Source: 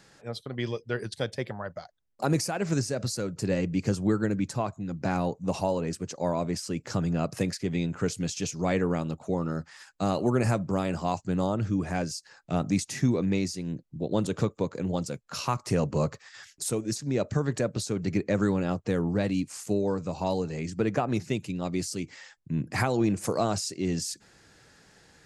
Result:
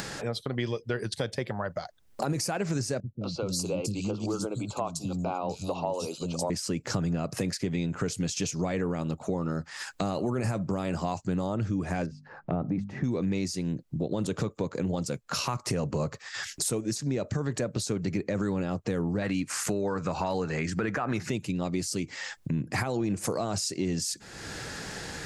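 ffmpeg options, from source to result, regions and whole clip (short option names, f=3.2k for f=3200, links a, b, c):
-filter_complex "[0:a]asettb=1/sr,asplit=3[a][b][c];[a]atrim=end=3.004[d];[b]atrim=start=3:end=6.5,asetpts=PTS-STARTPTS,afade=t=in:d=0.004:c=qsin,afade=t=out:st=3.496:d=0.004:c=qsin,asuperstop=centerf=1800:order=4:qfactor=1.3,lowshelf=f=420:g=-9,acrossover=split=270|3300[e][f][g];[f]adelay=210[h];[g]adelay=460[i];[e][h][i]amix=inputs=3:normalize=0,atrim=end_sample=154350[j];[c]atrim=start=6.496[k];[d][j]acrossfade=d=0.004:c1=hsin:c2=qsin[l];[l][k]acrossfade=d=0.004:c1=qsin:c2=hsin,asettb=1/sr,asplit=3[m][n][o];[m]atrim=end=12.064[p];[n]atrim=start=12.06:end=13.04,asetpts=PTS-STARTPTS,afade=t=in:d=0.004:c=qsin,afade=t=out:st=0.976:d=0.004:c=qsin,lowpass=1.1k,bandreject=f=50:t=h:w=6,bandreject=f=100:t=h:w=6,bandreject=f=150:t=h:w=6,bandreject=f=200:t=h:w=6,bandreject=f=250:t=h:w=6[q];[o]atrim=start=13.036[r];[p][q]acrossfade=d=0.004:c1=hsin:c2=qsin[s];[s][r]acrossfade=d=0.004:c1=qsin:c2=hsin,asettb=1/sr,asplit=3[t][u][v];[t]atrim=end=19.224[w];[u]atrim=start=19.22:end=21.3,asetpts=PTS-STARTPTS,afade=t=in:d=0.004:c=qsin,afade=t=out:st=2.076:d=0.004:c=qsin,equalizer=f=1.5k:t=o:w=1.4:g=12.5,acompressor=mode=upward:threshold=-29dB:ratio=2.5:attack=3.2:release=140:knee=2.83:detection=peak[x];[v]atrim=start=21.296[y];[w][x]acrossfade=d=0.004:c1=hsin:c2=qsin[z];[z][y]acrossfade=d=0.004:c1=qsin:c2=hsin,acompressor=mode=upward:threshold=-34dB:ratio=2.5,alimiter=limit=-19dB:level=0:latency=1:release=23,acompressor=threshold=-36dB:ratio=3,volume=7.5dB"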